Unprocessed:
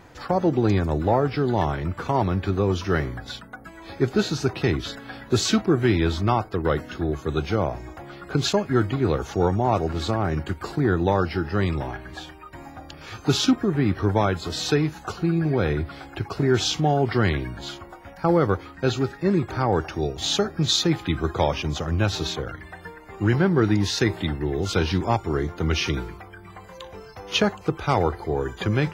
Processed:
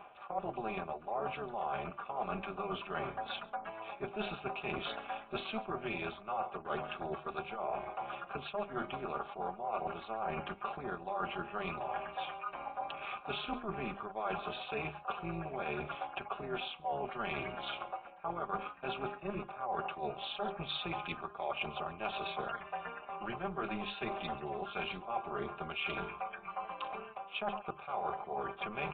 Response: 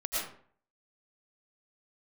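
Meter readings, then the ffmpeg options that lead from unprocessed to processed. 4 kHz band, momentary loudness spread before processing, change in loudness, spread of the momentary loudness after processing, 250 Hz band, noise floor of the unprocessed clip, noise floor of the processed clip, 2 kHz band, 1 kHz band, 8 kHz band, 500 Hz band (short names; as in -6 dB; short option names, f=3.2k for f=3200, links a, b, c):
-15.5 dB, 17 LU, -16.0 dB, 4 LU, -21.5 dB, -44 dBFS, -53 dBFS, -10.5 dB, -8.5 dB, under -40 dB, -16.0 dB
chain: -filter_complex "[0:a]asplit=3[a][b][c];[a]bandpass=f=730:t=q:w=8,volume=0dB[d];[b]bandpass=f=1.09k:t=q:w=8,volume=-6dB[e];[c]bandpass=f=2.44k:t=q:w=8,volume=-9dB[f];[d][e][f]amix=inputs=3:normalize=0,bandreject=f=50:t=h:w=6,bandreject=f=100:t=h:w=6,bandreject=f=150:t=h:w=6,bandreject=f=200:t=h:w=6,bandreject=f=250:t=h:w=6,bandreject=f=300:t=h:w=6,bandreject=f=350:t=h:w=6,bandreject=f=400:t=h:w=6,aresample=8000,aresample=44100,aecho=1:1:5:0.72,acontrast=68,equalizer=f=510:t=o:w=1.5:g=-7,asplit=2[g][h];[h]aecho=0:1:137:0.0708[i];[g][i]amix=inputs=2:normalize=0,tremolo=f=220:d=0.71,areverse,acompressor=threshold=-46dB:ratio=8,areverse,volume=11dB"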